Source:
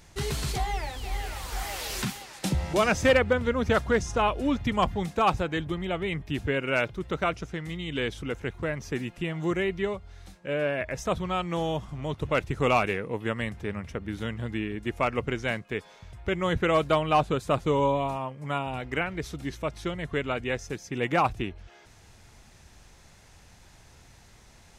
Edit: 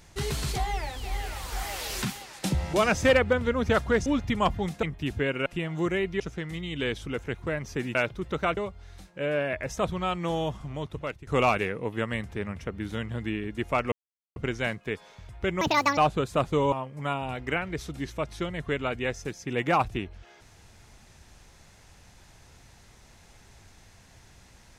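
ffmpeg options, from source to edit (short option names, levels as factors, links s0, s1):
-filter_complex "[0:a]asplit=12[s0][s1][s2][s3][s4][s5][s6][s7][s8][s9][s10][s11];[s0]atrim=end=4.062[s12];[s1]atrim=start=4.428:end=5.202[s13];[s2]atrim=start=6.108:end=6.742[s14];[s3]atrim=start=9.108:end=9.852[s15];[s4]atrim=start=7.358:end=9.112[s16];[s5]atrim=start=6.738:end=7.362[s17];[s6]atrim=start=9.848:end=12.55,asetpts=PTS-STARTPTS,afade=t=out:st=2.062:d=0.64:silence=0.11885[s18];[s7]atrim=start=12.55:end=15.2,asetpts=PTS-STARTPTS,afade=t=in:d=0.004:c=hsin:silence=0.11885,afade=t=out:st=2.646:d=0.004:c=hsin,apad=pad_dur=0.44[s19];[s8]atrim=start=15.2:end=16.454,asetpts=PTS-STARTPTS,afade=t=in:d=0.004:c=hsin[s20];[s9]atrim=start=16.45:end=17.11,asetpts=PTS-STARTPTS,asetrate=80262,aresample=44100,atrim=end_sample=15992,asetpts=PTS-STARTPTS[s21];[s10]atrim=start=17.106:end=17.862[s22];[s11]atrim=start=18.168[s23];[s12][s13]acrossfade=d=0.004:c1=hsin:c2=hsin[s24];[s24][s14]acrossfade=d=0.004:c1=hsin:c2=hsin[s25];[s25][s15]acrossfade=d=0.004:c1=hsin:c2=hsin[s26];[s26][s16]acrossfade=d=0.004:c1=hsin:c2=hsin[s27];[s27][s17]acrossfade=d=0.004:c1=hsin:c2=hsin[s28];[s18][s19][s20]concat=n=3:v=0:a=1[s29];[s28][s29]acrossfade=d=0.004:c1=hsin:c2=hsin[s30];[s30][s21]acrossfade=d=0.004:c1=hsin:c2=hsin[s31];[s31][s22]acrossfade=d=0.004:c1=hsin:c2=hsin[s32];[s32][s23]acrossfade=d=0.004:c1=hsin:c2=hsin"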